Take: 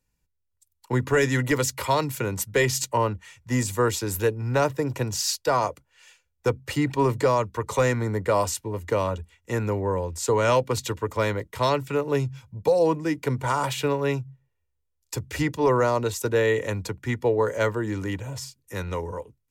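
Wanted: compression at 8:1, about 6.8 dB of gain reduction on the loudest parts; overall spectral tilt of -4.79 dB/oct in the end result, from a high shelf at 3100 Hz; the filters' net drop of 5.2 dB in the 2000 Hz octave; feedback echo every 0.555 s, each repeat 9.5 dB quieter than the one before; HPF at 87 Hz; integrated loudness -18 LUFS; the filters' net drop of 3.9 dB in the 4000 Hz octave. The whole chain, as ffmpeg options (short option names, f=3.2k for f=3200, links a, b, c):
-af "highpass=87,equalizer=f=2k:t=o:g=-6.5,highshelf=f=3.1k:g=5,equalizer=f=4k:t=o:g=-8,acompressor=threshold=-24dB:ratio=8,aecho=1:1:555|1110|1665|2220:0.335|0.111|0.0365|0.012,volume=12dB"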